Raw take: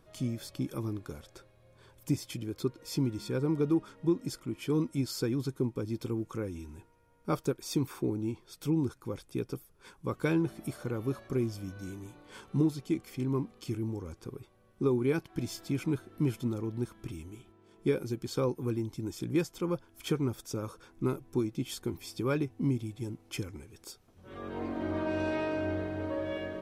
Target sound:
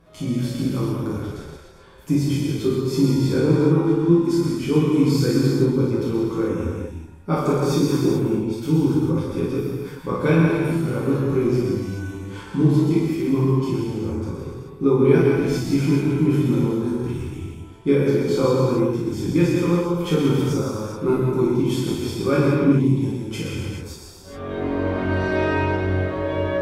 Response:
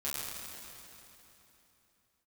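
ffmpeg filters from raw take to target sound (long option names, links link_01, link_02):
-filter_complex "[0:a]highshelf=frequency=4600:gain=-7.5[link_01];[1:a]atrim=start_sample=2205,afade=type=out:start_time=0.41:duration=0.01,atrim=end_sample=18522,asetrate=34839,aresample=44100[link_02];[link_01][link_02]afir=irnorm=-1:irlink=0,volume=8dB"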